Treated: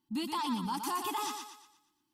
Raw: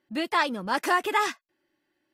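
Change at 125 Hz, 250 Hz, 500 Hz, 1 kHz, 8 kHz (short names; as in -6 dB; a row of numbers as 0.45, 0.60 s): n/a, -3.0 dB, -14.5 dB, -8.0 dB, -1.0 dB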